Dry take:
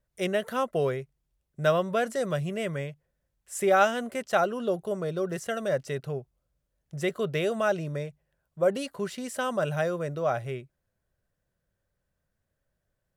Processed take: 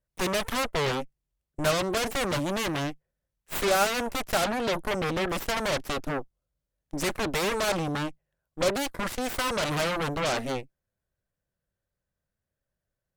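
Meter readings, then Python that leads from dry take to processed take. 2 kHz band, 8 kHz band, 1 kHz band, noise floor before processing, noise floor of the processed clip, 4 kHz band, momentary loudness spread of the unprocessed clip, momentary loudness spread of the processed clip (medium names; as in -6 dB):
+3.0 dB, +7.5 dB, +1.0 dB, -81 dBFS, under -85 dBFS, +9.5 dB, 11 LU, 8 LU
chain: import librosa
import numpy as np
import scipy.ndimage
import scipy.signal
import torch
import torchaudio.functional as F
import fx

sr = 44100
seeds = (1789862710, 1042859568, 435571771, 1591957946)

y = 10.0 ** (-20.5 / 20.0) * np.tanh(x / 10.0 ** (-20.5 / 20.0))
y = fx.cheby_harmonics(y, sr, harmonics=(3, 5, 8), levels_db=(-11, -26, -8), full_scale_db=-20.5)
y = y * librosa.db_to_amplitude(2.0)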